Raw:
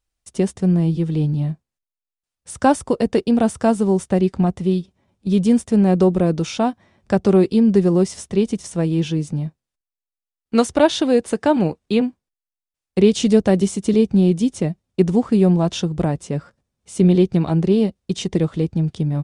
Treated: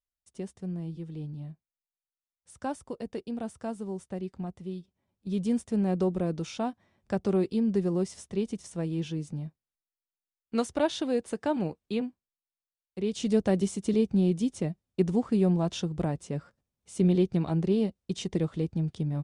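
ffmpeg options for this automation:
-af "volume=-2dB,afade=t=in:st=4.75:d=0.8:silence=0.473151,afade=t=out:st=11.82:d=1.16:silence=0.421697,afade=t=in:st=12.98:d=0.44:silence=0.316228"

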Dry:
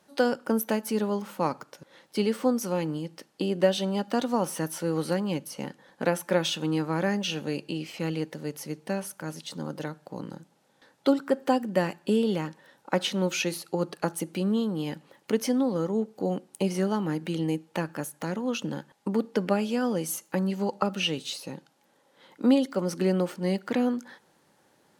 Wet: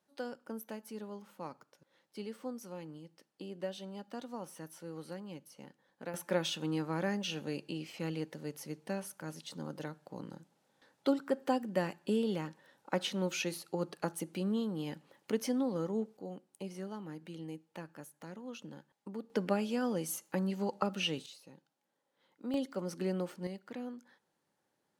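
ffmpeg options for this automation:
-af "asetnsamples=n=441:p=0,asendcmd='6.14 volume volume -7.5dB;16.17 volume volume -16dB;19.3 volume volume -6.5dB;21.26 volume volume -18dB;22.54 volume volume -10dB;23.47 volume volume -17dB',volume=-17dB"

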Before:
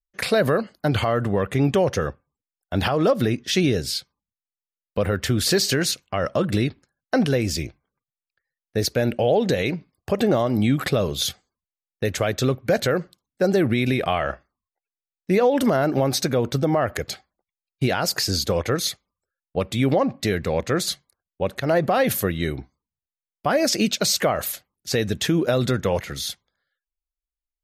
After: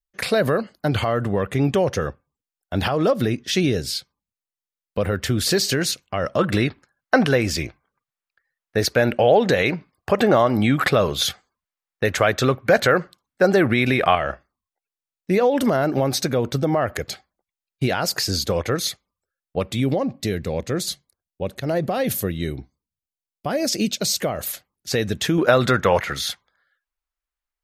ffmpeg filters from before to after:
-af "asetnsamples=n=441:p=0,asendcmd='6.39 equalizer g 9.5;14.15 equalizer g 0.5;19.8 equalizer g -7;24.47 equalizer g 1.5;25.38 equalizer g 11.5',equalizer=f=1.3k:t=o:w=2.2:g=0"

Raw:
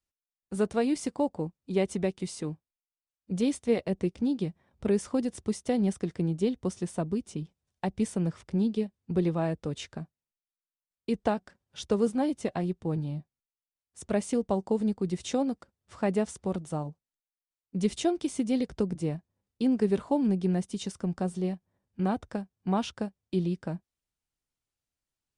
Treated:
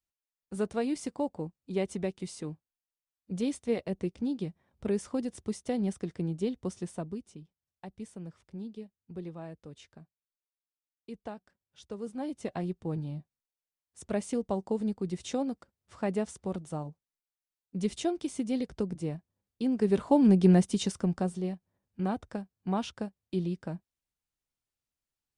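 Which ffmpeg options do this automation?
-af "volume=17dB,afade=t=out:st=6.81:d=0.62:silence=0.316228,afade=t=in:st=12:d=0.59:silence=0.298538,afade=t=in:st=19.73:d=0.78:silence=0.298538,afade=t=out:st=20.51:d=0.9:silence=0.316228"

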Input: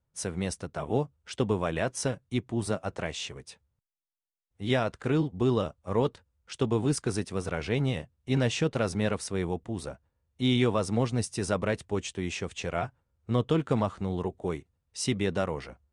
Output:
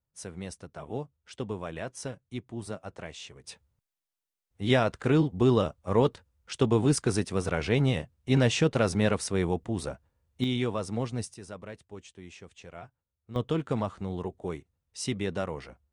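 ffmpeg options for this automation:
-af "asetnsamples=n=441:p=0,asendcmd='3.44 volume volume 3dB;10.44 volume volume -4.5dB;11.34 volume volume -14dB;13.36 volume volume -3dB',volume=-7.5dB"

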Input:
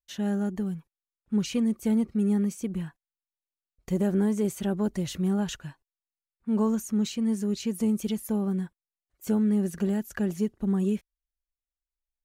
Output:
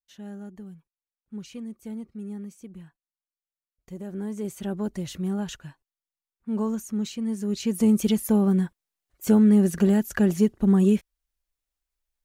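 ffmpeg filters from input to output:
-af "volume=7dB,afade=t=in:st=4.05:d=0.68:silence=0.334965,afade=t=in:st=7.37:d=0.62:silence=0.354813"

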